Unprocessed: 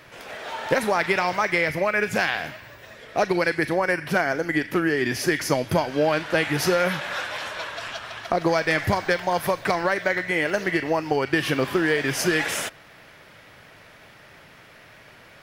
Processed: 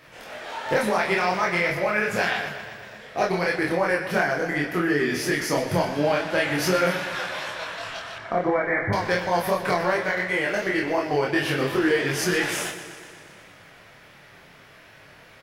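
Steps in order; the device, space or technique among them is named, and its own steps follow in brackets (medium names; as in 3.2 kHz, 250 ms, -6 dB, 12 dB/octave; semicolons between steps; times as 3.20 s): double-tracked vocal (doubling 28 ms -2.5 dB; chorus 2.8 Hz, delay 20 ms, depth 4.1 ms); 8.18–8.93 s: Chebyshev low-pass 2.3 kHz, order 10; modulated delay 121 ms, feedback 69%, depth 75 cents, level -12 dB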